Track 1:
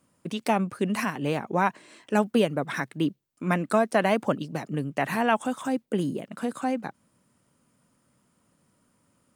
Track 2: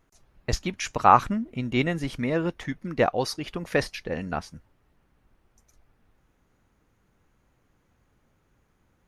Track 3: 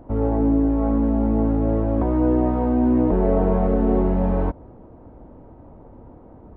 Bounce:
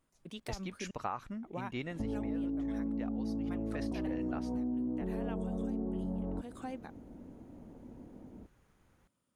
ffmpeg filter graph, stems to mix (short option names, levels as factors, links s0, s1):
-filter_complex "[0:a]equalizer=f=3400:w=4.4:g=6,volume=0.188,asplit=3[s0][s1][s2];[s0]atrim=end=0.91,asetpts=PTS-STARTPTS,afade=t=out:st=0.906:d=0.004:c=hsin[s3];[s1]atrim=start=0.91:end=1.43,asetpts=PTS-STARTPTS,volume=0[s4];[s2]atrim=start=1.43,asetpts=PTS-STARTPTS,afade=t=in:d=0.004:c=hsin[s5];[s3][s4][s5]concat=n=3:v=0:a=1[s6];[1:a]volume=0.891,afade=t=in:st=3.7:d=0.6:silence=0.251189,asplit=2[s7][s8];[2:a]lowpass=1000,equalizer=f=230:t=o:w=1.2:g=11,adelay=1900,volume=0.237[s9];[s8]apad=whole_len=412497[s10];[s6][s10]sidechaincompress=threshold=0.00708:ratio=8:attack=20:release=107[s11];[s11][s7][s9]amix=inputs=3:normalize=0,acompressor=threshold=0.0224:ratio=8"